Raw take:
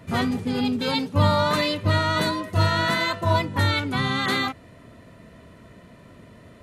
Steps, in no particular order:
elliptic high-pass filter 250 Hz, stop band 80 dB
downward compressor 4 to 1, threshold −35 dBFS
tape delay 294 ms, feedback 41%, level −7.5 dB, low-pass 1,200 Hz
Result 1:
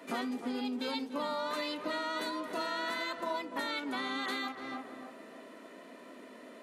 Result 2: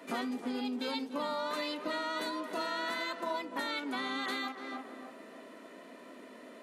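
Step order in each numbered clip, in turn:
elliptic high-pass filter, then tape delay, then downward compressor
tape delay, then elliptic high-pass filter, then downward compressor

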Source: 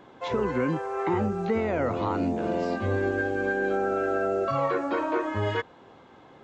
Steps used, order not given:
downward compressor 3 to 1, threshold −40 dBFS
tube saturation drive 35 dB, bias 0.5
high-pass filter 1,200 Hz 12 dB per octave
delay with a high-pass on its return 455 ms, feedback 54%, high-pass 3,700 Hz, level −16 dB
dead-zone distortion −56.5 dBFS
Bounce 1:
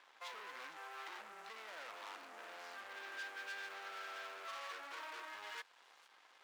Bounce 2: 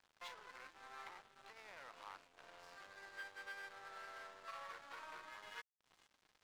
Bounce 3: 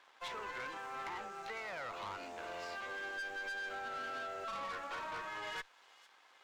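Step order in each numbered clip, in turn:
tube saturation, then delay with a high-pass on its return, then downward compressor, then dead-zone distortion, then high-pass filter
delay with a high-pass on its return, then downward compressor, then tube saturation, then high-pass filter, then dead-zone distortion
dead-zone distortion, then high-pass filter, then tube saturation, then delay with a high-pass on its return, then downward compressor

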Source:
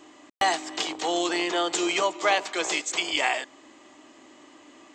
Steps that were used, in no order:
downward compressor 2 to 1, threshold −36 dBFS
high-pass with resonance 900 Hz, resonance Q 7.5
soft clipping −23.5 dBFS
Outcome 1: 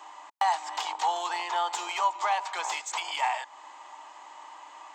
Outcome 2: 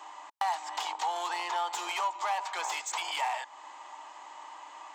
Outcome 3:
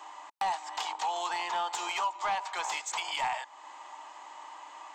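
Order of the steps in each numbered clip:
downward compressor, then soft clipping, then high-pass with resonance
soft clipping, then high-pass with resonance, then downward compressor
high-pass with resonance, then downward compressor, then soft clipping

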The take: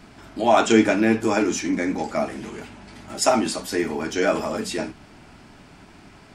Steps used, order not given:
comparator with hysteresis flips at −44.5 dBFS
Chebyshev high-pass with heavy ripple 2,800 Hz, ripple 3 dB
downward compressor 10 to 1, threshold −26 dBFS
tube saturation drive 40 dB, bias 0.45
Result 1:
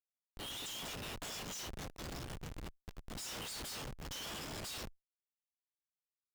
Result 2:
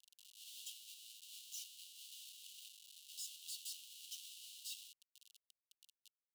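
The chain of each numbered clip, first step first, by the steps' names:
Chebyshev high-pass with heavy ripple, then downward compressor, then comparator with hysteresis, then tube saturation
downward compressor, then tube saturation, then comparator with hysteresis, then Chebyshev high-pass with heavy ripple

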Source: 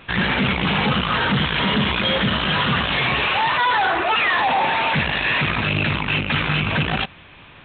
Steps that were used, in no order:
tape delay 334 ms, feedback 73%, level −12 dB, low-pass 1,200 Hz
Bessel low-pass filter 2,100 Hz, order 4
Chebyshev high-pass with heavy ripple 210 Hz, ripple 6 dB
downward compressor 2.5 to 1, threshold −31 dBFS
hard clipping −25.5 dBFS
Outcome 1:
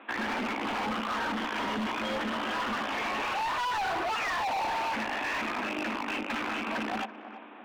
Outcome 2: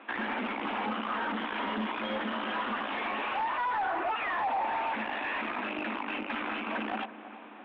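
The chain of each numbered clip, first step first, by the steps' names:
Bessel low-pass filter, then tape delay, then Chebyshev high-pass with heavy ripple, then hard clipping, then downward compressor
Chebyshev high-pass with heavy ripple, then downward compressor, then tape delay, then hard clipping, then Bessel low-pass filter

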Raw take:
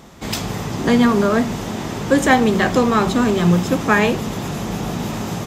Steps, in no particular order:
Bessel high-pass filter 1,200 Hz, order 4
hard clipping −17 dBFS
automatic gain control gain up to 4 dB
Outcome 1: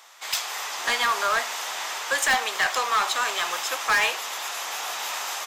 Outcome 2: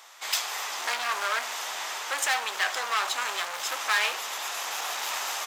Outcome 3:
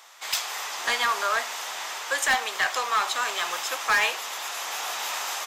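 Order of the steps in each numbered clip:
Bessel high-pass filter, then automatic gain control, then hard clipping
automatic gain control, then hard clipping, then Bessel high-pass filter
automatic gain control, then Bessel high-pass filter, then hard clipping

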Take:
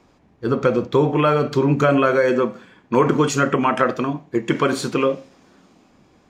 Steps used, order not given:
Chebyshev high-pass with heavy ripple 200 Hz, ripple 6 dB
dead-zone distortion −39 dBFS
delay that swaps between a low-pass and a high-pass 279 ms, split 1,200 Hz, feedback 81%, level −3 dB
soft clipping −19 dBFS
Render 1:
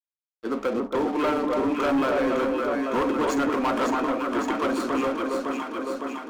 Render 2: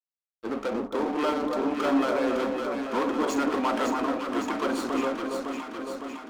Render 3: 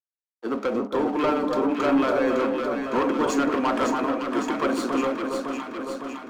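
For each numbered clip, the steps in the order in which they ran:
Chebyshev high-pass with heavy ripple, then dead-zone distortion, then delay that swaps between a low-pass and a high-pass, then soft clipping
soft clipping, then Chebyshev high-pass with heavy ripple, then dead-zone distortion, then delay that swaps between a low-pass and a high-pass
dead-zone distortion, then Chebyshev high-pass with heavy ripple, then soft clipping, then delay that swaps between a low-pass and a high-pass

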